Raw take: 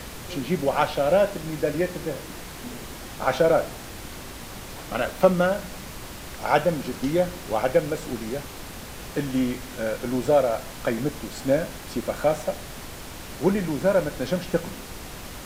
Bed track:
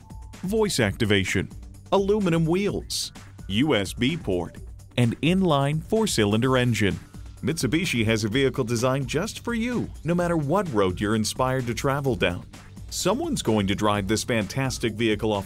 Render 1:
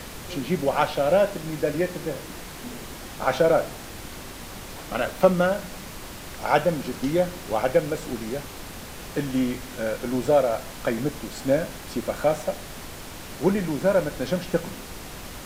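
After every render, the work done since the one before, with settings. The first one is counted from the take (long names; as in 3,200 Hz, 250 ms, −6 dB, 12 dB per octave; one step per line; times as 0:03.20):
hum removal 60 Hz, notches 2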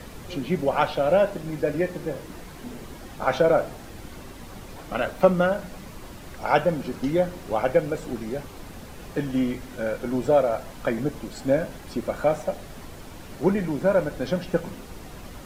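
broadband denoise 8 dB, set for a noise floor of −39 dBFS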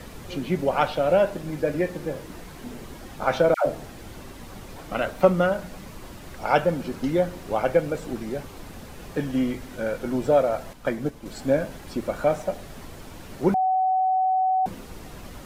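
0:03.54–0:04.15: all-pass dispersion lows, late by 121 ms, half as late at 800 Hz
0:10.73–0:11.26: expander for the loud parts, over −36 dBFS
0:13.54–0:14.66: beep over 752 Hz −18.5 dBFS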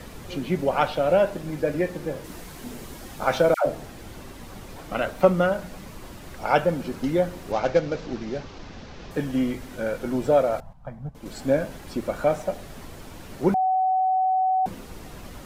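0:02.24–0:03.59: high-shelf EQ 4,700 Hz +6.5 dB
0:07.52–0:09.11: variable-slope delta modulation 32 kbit/s
0:10.60–0:11.15: drawn EQ curve 160 Hz 0 dB, 350 Hz −26 dB, 790 Hz −4 dB, 1,900 Hz −20 dB, 12,000 Hz −26 dB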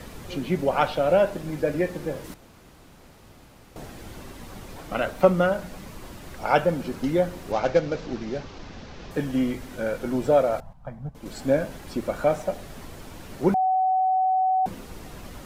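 0:02.34–0:03.76: fill with room tone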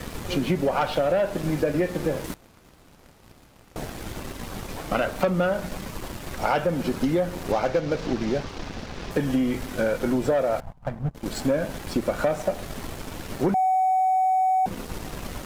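leveller curve on the samples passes 2
downward compressor, threshold −20 dBFS, peak gain reduction 11 dB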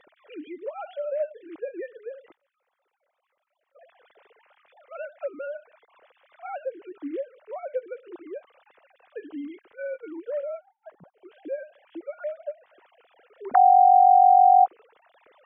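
three sine waves on the formant tracks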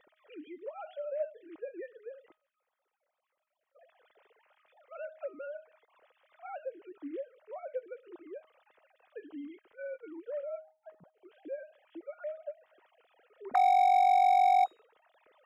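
hard clipping −12 dBFS, distortion −18 dB
tuned comb filter 630 Hz, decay 0.36 s, mix 60%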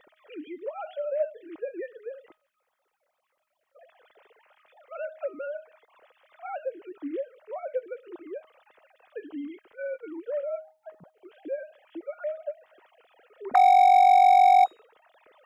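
level +7 dB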